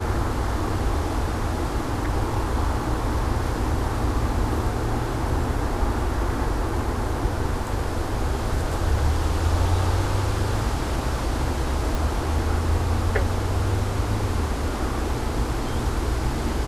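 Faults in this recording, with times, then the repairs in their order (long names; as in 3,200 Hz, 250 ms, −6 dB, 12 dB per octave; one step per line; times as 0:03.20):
0:11.95: click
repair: click removal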